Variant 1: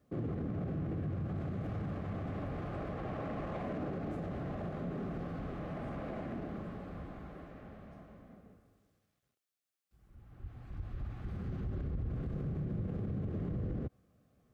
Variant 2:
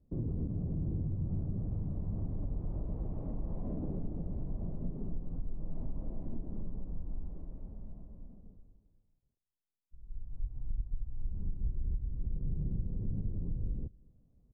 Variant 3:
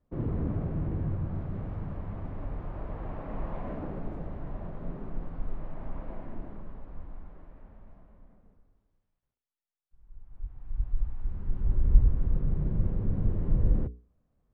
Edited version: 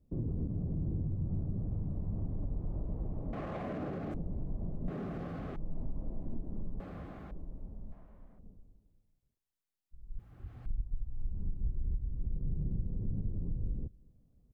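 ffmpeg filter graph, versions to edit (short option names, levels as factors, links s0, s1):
-filter_complex "[0:a]asplit=4[s0][s1][s2][s3];[1:a]asplit=6[s4][s5][s6][s7][s8][s9];[s4]atrim=end=3.332[s10];[s0]atrim=start=3.328:end=4.142[s11];[s5]atrim=start=4.138:end=4.882[s12];[s1]atrim=start=4.878:end=5.562[s13];[s6]atrim=start=5.558:end=6.802[s14];[s2]atrim=start=6.798:end=7.312[s15];[s7]atrim=start=7.308:end=7.922[s16];[2:a]atrim=start=7.918:end=8.392[s17];[s8]atrim=start=8.388:end=10.192[s18];[s3]atrim=start=10.188:end=10.662[s19];[s9]atrim=start=10.658[s20];[s10][s11]acrossfade=d=0.004:c1=hsin:c2=hsin[s21];[s21][s12]acrossfade=d=0.004:c1=hsin:c2=hsin[s22];[s22][s13]acrossfade=d=0.004:c1=hsin:c2=hsin[s23];[s23][s14]acrossfade=d=0.004:c1=hsin:c2=hsin[s24];[s24][s15]acrossfade=d=0.004:c1=hsin:c2=hsin[s25];[s25][s16]acrossfade=d=0.004:c1=hsin:c2=hsin[s26];[s26][s17]acrossfade=d=0.004:c1=hsin:c2=hsin[s27];[s27][s18]acrossfade=d=0.004:c1=hsin:c2=hsin[s28];[s28][s19]acrossfade=d=0.004:c1=hsin:c2=hsin[s29];[s29][s20]acrossfade=d=0.004:c1=hsin:c2=hsin"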